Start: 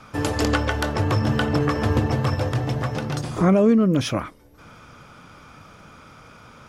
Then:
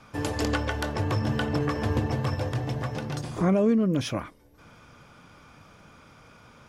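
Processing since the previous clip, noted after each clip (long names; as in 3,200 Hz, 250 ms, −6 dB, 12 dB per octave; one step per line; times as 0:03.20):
notch filter 1,300 Hz, Q 13
level −5.5 dB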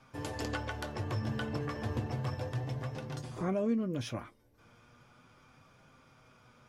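flanger 0.34 Hz, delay 7.6 ms, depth 1.1 ms, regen +51%
level −5 dB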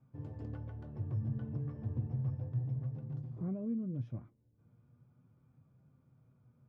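resonant band-pass 130 Hz, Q 1.6
level +1.5 dB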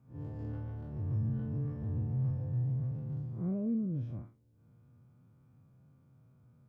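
spectrum smeared in time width 98 ms
level +4.5 dB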